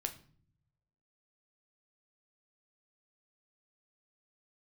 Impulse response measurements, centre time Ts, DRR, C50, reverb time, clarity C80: 8 ms, 5.5 dB, 13.5 dB, 0.50 s, 18.0 dB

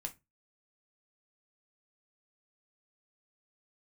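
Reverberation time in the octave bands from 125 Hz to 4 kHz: 0.40, 0.30, 0.25, 0.20, 0.20, 0.15 seconds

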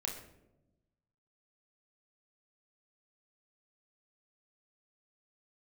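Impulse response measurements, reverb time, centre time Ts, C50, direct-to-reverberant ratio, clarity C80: 0.95 s, 31 ms, 6.5 dB, 0.0 dB, 9.0 dB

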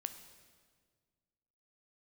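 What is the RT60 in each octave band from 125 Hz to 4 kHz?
2.2, 2.1, 1.8, 1.6, 1.4, 1.4 seconds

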